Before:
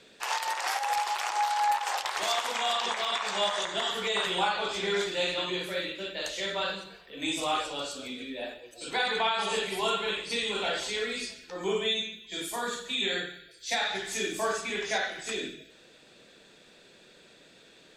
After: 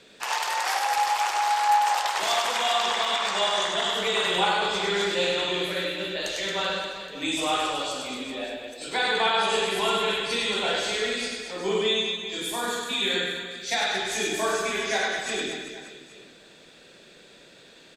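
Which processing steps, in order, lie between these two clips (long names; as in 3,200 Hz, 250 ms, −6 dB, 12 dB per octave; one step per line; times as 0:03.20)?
reverse bouncing-ball delay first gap 100 ms, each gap 1.25×, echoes 5
level +2.5 dB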